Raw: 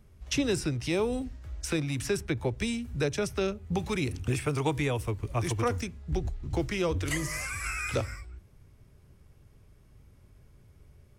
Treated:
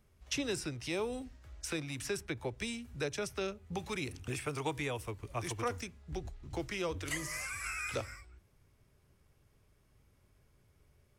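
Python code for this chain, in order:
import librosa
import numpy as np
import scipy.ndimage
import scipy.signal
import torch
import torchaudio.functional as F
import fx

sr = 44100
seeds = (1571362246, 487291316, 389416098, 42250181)

y = fx.low_shelf(x, sr, hz=350.0, db=-8.0)
y = F.gain(torch.from_numpy(y), -4.5).numpy()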